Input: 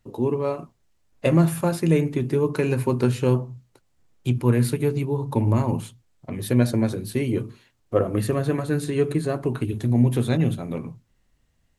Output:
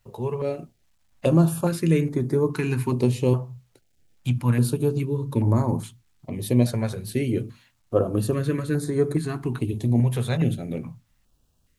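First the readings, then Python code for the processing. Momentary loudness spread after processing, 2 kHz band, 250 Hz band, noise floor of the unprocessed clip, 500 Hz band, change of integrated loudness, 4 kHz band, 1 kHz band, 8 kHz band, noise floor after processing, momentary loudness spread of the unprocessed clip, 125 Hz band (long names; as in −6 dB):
10 LU, −2.0 dB, −1.0 dB, −67 dBFS, −1.5 dB, −1.0 dB, −1.0 dB, −2.5 dB, 0.0 dB, −67 dBFS, 10 LU, −0.5 dB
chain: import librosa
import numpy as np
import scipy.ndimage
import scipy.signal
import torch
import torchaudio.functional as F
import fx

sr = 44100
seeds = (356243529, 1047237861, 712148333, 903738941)

y = fx.quant_dither(x, sr, seeds[0], bits=12, dither='none')
y = fx.filter_held_notch(y, sr, hz=2.4, low_hz=290.0, high_hz=2800.0)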